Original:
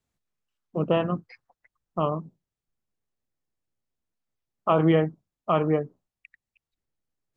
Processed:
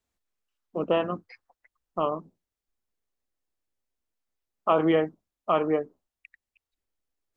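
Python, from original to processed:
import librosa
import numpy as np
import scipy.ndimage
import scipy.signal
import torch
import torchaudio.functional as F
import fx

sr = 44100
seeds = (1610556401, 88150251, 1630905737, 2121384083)

y = fx.peak_eq(x, sr, hz=140.0, db=-14.5, octaves=0.76)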